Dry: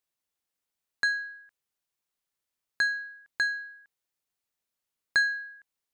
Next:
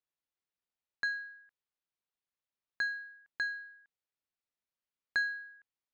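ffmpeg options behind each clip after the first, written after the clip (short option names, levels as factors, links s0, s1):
-af "lowpass=4400,volume=0.447"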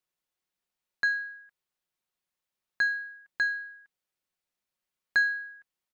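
-af "aecho=1:1:5.5:0.33,volume=1.78"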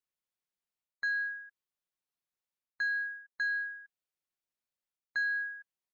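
-af "areverse,acompressor=threshold=0.0158:ratio=5,areverse,afftdn=nr=12:nf=-54,volume=1.68"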